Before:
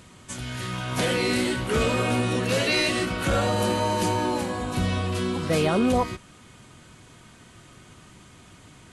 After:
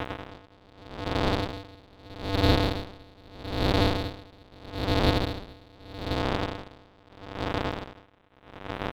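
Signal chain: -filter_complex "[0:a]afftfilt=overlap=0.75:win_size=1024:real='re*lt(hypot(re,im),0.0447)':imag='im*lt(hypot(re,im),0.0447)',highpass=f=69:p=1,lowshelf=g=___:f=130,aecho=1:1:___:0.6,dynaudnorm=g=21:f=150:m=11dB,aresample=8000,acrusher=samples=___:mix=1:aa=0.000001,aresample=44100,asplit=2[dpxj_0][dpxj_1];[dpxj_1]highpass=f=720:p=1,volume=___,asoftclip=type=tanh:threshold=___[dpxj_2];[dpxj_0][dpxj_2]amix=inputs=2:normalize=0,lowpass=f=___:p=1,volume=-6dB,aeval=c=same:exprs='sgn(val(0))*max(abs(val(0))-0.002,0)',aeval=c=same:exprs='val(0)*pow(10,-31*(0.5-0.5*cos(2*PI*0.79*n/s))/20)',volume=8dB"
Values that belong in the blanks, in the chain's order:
-2, 5.3, 41, 35dB, -16dB, 2600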